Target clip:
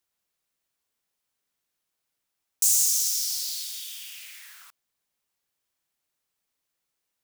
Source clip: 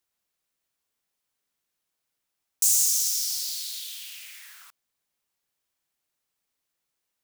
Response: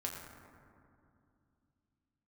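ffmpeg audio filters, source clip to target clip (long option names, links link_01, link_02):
-filter_complex "[0:a]asettb=1/sr,asplit=3[link_01][link_02][link_03];[link_01]atrim=end=3.644[link_04];[link_02]atrim=start=3.64:end=4.17,asetpts=PTS-STARTPTS,afade=type=in:duration=0.004:curve=qsin,afade=type=out:start_time=0.526:duration=0.004:curve=qsin,bandreject=frequency=4100:width=7.9[link_05];[link_03]atrim=start=4.166[link_06];[link_04][link_05]acrossfade=duration=0.004:curve1=hsin:curve2=qsin[link_07];[link_07][link_06]acrossfade=duration=0.004:curve1=qsin:curve2=hsin"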